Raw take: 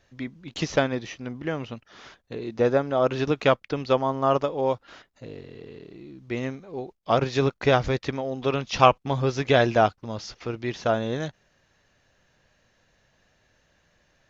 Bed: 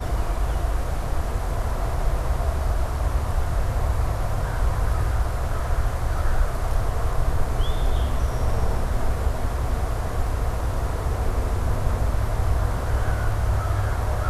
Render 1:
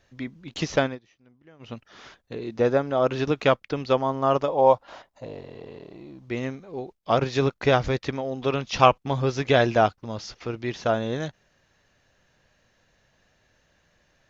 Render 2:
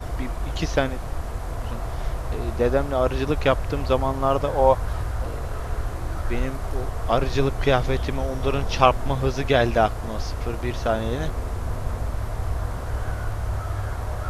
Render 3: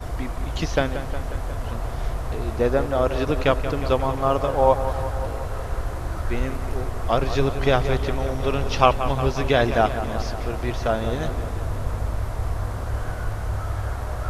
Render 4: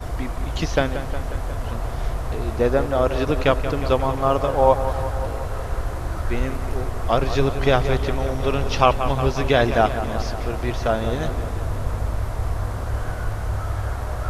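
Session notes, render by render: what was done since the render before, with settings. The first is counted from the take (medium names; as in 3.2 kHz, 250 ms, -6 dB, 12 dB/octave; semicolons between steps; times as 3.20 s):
0.86–1.72 s: dip -23.5 dB, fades 0.13 s; 4.48–6.25 s: high-order bell 760 Hz +10 dB 1.2 oct
add bed -4.5 dB
feedback echo behind a low-pass 180 ms, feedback 68%, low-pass 3.6 kHz, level -11 dB
trim +1.5 dB; peak limiter -2 dBFS, peak gain reduction 2 dB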